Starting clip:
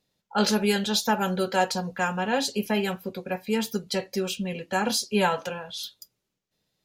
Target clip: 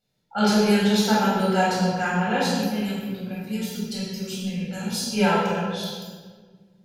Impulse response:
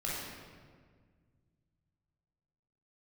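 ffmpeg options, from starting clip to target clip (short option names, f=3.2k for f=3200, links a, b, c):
-filter_complex "[0:a]asettb=1/sr,asplit=3[a][b][c];[a]atrim=end=2.464[d];[b]atrim=start=2.46:end=5.09,asetpts=PTS-STARTPTS,afade=t=in:d=0.004:c=qsin,afade=t=out:st=2.626:d=0.004:c=qsin,acrossover=split=220|3000[e][f][g];[f]acompressor=threshold=-41dB:ratio=6[h];[e][h][g]amix=inputs=3:normalize=0[i];[c]atrim=start=5.086[j];[d][i]acrossfade=d=0.004:c1=hsin:c2=qsin[k];[k][j]acrossfade=d=0.004:c1=qsin:c2=hsin[l];[1:a]atrim=start_sample=2205,asetrate=48510,aresample=44100[m];[l][m]afir=irnorm=-1:irlink=0,volume=-1dB"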